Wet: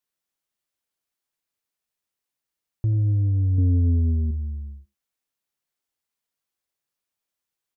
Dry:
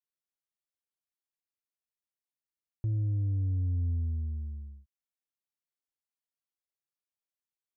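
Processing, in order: 3.58–4.31 s: peaking EQ 380 Hz +12 dB 2.1 oct; speakerphone echo 90 ms, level -11 dB; trim +8.5 dB

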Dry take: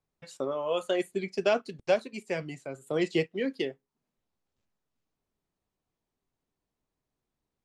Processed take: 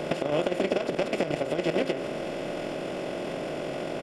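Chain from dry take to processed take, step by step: spectral levelling over time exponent 0.2; compression 20:1, threshold -23 dBFS, peak gain reduction 10 dB; treble shelf 4.4 kHz +3 dB; filtered feedback delay 115 ms, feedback 67%, low-pass 3.1 kHz, level -16.5 dB; level held to a coarse grid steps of 9 dB; bass shelf 190 Hz +8.5 dB; tempo 1.9×; trim +2.5 dB

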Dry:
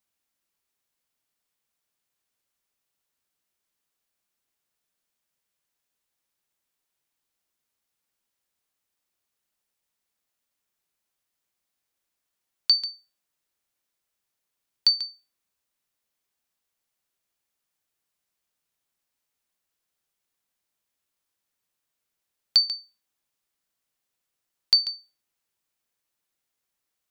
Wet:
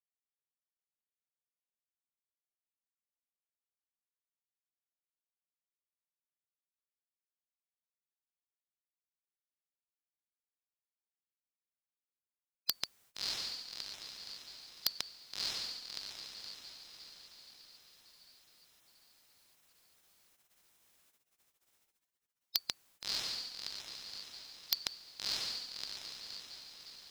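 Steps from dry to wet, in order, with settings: echo that smears into a reverb 637 ms, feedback 51%, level -7 dB; spectral gate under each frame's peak -25 dB weak; wavefolder -26 dBFS; trim +12 dB

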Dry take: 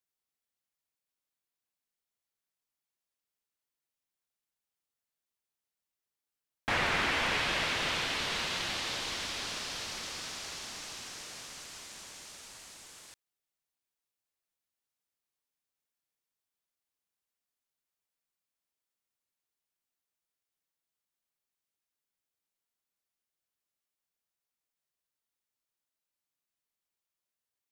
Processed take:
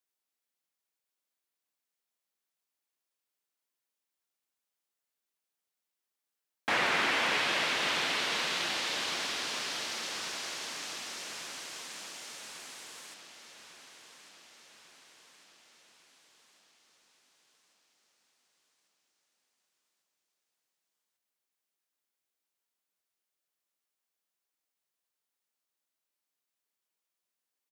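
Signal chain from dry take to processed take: high-pass 220 Hz 12 dB/octave; feedback delay 1147 ms, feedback 59%, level -12 dB; trim +1.5 dB

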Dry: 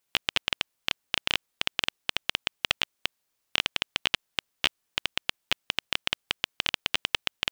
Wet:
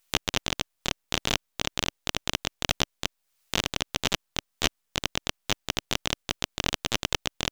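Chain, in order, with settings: peaking EQ 300 Hz -14.5 dB 0.26 oct; half-wave rectifier; harmony voices +3 st -5 dB; tape noise reduction on one side only encoder only; trim +1.5 dB

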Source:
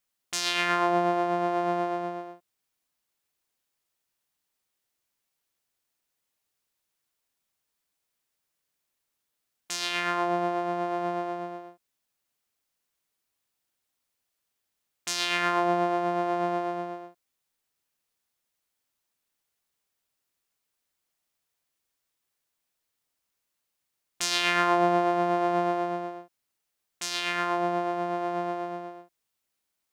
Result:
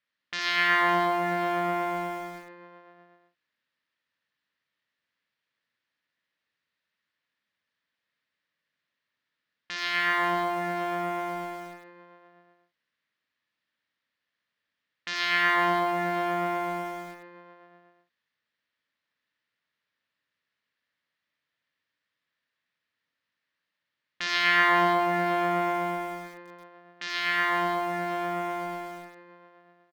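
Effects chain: cabinet simulation 120–4200 Hz, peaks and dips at 390 Hz -8 dB, 770 Hz -9 dB, 1.8 kHz +9 dB; reverse bouncing-ball echo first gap 60 ms, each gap 1.6×, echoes 5; bit-crushed delay 85 ms, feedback 35%, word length 7-bit, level -8.5 dB

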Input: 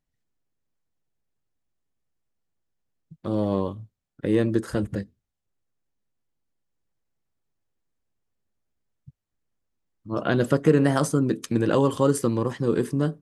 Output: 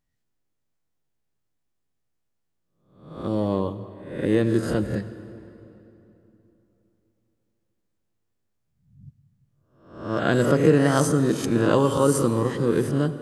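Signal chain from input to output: reverse spectral sustain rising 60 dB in 0.60 s; reverberation RT60 3.2 s, pre-delay 72 ms, DRR 12.5 dB

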